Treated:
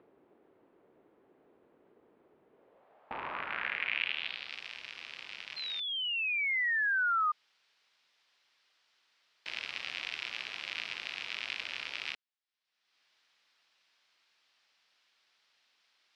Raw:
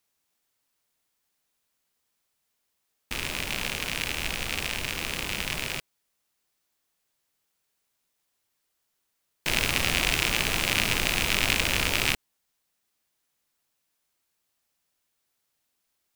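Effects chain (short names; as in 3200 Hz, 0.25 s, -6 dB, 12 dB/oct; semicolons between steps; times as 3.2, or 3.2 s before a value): high shelf 8200 Hz -7.5 dB; upward compressor, threshold -36 dBFS; band-pass sweep 380 Hz -> 5700 Hz, 2.51–4.6; painted sound fall, 5.56–7.32, 1200–4200 Hz -34 dBFS; air absorption 450 m; gain +8 dB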